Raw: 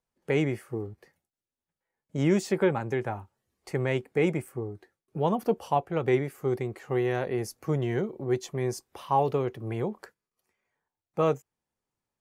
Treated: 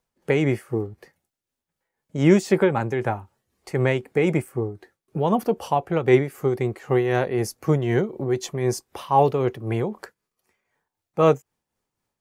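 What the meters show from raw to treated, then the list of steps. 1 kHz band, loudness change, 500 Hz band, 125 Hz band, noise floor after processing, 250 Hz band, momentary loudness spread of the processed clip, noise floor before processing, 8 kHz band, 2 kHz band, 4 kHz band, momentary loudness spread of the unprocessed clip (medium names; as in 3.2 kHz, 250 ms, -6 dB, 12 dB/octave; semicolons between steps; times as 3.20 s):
+6.0 dB, +6.5 dB, +6.0 dB, +6.5 dB, -85 dBFS, +6.5 dB, 11 LU, under -85 dBFS, +6.5 dB, +6.0 dB, +6.0 dB, 12 LU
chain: tremolo 3.9 Hz, depth 47%; trim +8.5 dB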